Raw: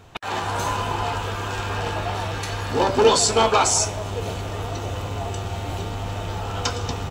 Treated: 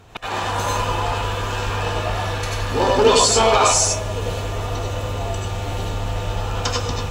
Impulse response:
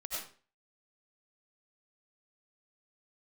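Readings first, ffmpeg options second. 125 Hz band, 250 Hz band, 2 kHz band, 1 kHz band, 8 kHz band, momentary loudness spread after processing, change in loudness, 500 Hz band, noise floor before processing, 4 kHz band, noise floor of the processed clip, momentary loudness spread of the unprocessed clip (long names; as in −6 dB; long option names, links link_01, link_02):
+3.5 dB, +1.5 dB, +3.0 dB, +2.5 dB, +3.5 dB, 12 LU, +3.0 dB, +3.0 dB, −30 dBFS, +3.5 dB, −27 dBFS, 12 LU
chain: -filter_complex "[1:a]atrim=start_sample=2205,afade=type=out:start_time=0.14:duration=0.01,atrim=end_sample=6615,asetrate=40572,aresample=44100[link_01];[0:a][link_01]afir=irnorm=-1:irlink=0,volume=5.5dB"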